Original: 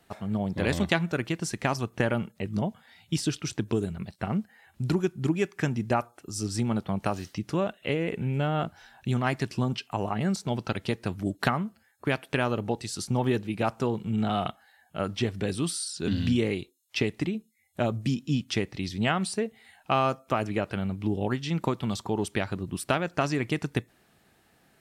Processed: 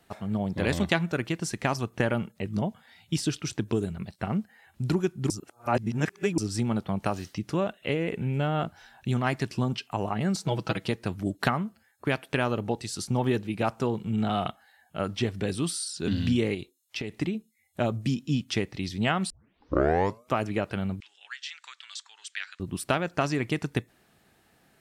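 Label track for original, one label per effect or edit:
5.300000	6.380000	reverse
10.340000	10.880000	comb filter 6.2 ms, depth 77%
16.540000	17.160000	downward compressor, threshold −29 dBFS
19.300000	19.300000	tape start 1.02 s
21.000000	22.600000	Chebyshev band-pass filter 1,600–7,800 Hz, order 3

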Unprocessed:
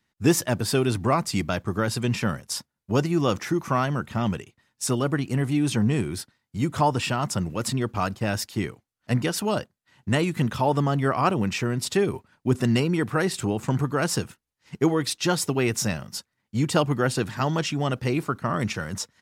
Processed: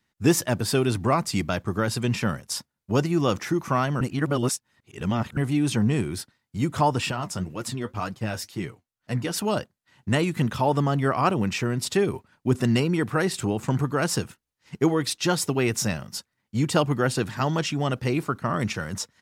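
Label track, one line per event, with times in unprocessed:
4.010000	5.370000	reverse
7.110000	9.310000	flanger 2 Hz, delay 5.4 ms, depth 7.4 ms, regen +45%

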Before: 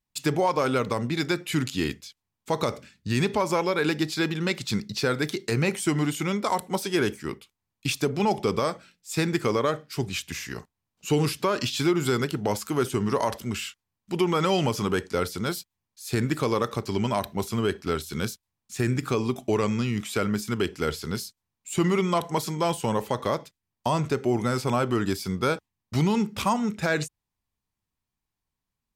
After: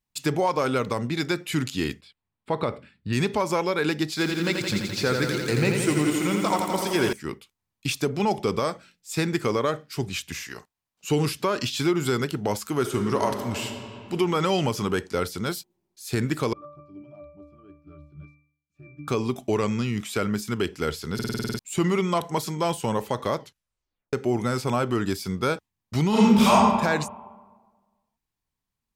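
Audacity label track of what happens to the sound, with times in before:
2.010000	3.130000	moving average over 7 samples
4.080000	7.130000	feedback echo at a low word length 85 ms, feedback 80%, word length 8 bits, level −5 dB
10.430000	11.090000	low-shelf EQ 310 Hz −11 dB
12.780000	14.140000	thrown reverb, RT60 2.5 s, DRR 5 dB
16.530000	19.080000	resonances in every octave D, decay 0.55 s
21.140000	21.140000	stutter in place 0.05 s, 9 plays
23.380000	23.380000	tape stop 0.75 s
26.090000	26.530000	thrown reverb, RT60 1.4 s, DRR −9 dB

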